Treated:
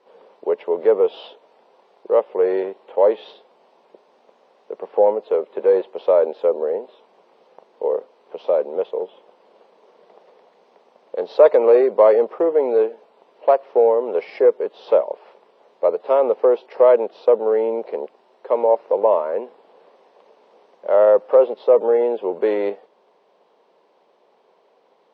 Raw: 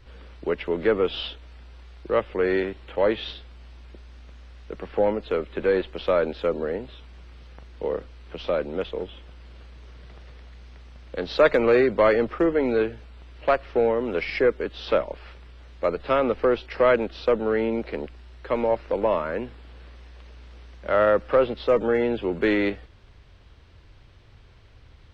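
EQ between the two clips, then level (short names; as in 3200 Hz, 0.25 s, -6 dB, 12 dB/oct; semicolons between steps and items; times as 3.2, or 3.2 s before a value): brick-wall FIR high-pass 170 Hz; band shelf 640 Hz +16 dB; -9.0 dB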